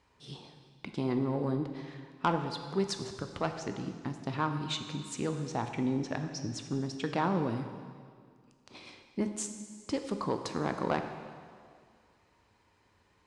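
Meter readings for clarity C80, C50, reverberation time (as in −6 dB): 9.0 dB, 8.0 dB, 2.0 s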